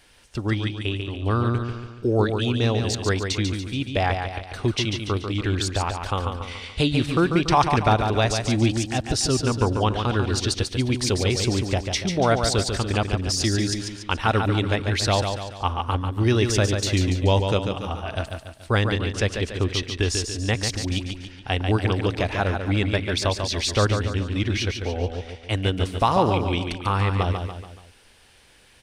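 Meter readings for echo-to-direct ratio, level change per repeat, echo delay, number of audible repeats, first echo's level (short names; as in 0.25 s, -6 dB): -5.0 dB, -6.5 dB, 0.143 s, 4, -6.0 dB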